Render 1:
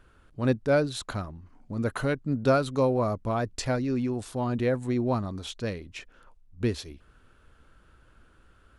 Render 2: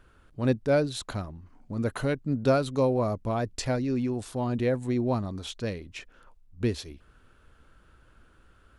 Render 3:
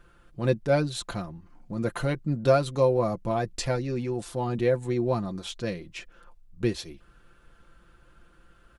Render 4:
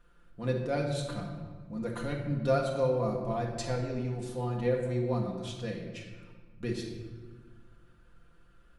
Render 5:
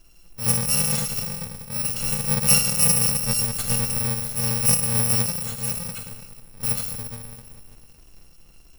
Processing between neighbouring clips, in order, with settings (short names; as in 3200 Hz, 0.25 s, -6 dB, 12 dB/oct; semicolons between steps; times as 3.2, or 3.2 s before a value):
dynamic EQ 1300 Hz, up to -4 dB, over -45 dBFS, Q 1.8
comb 5.8 ms, depth 63%
shoebox room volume 1400 m³, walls mixed, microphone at 1.8 m; gain -9 dB
FFT order left unsorted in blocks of 128 samples; gain +9 dB